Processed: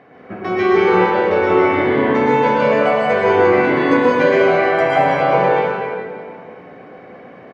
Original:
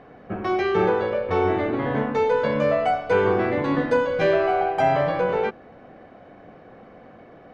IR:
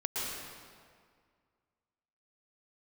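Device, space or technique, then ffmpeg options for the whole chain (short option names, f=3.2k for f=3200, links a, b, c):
PA in a hall: -filter_complex "[0:a]highpass=120,equalizer=f=2.1k:t=o:w=0.47:g=6.5,aecho=1:1:182:0.398[a];[1:a]atrim=start_sample=2205[b];[a][b]afir=irnorm=-1:irlink=0,volume=1dB"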